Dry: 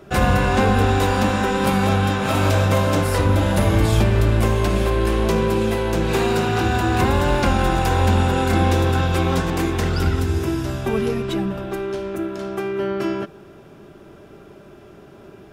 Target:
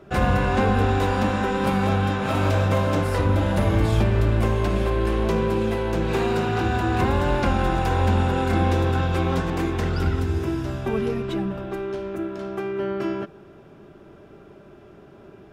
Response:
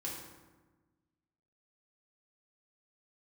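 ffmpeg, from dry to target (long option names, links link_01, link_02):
-af "highshelf=frequency=4700:gain=-9.5,volume=-3dB"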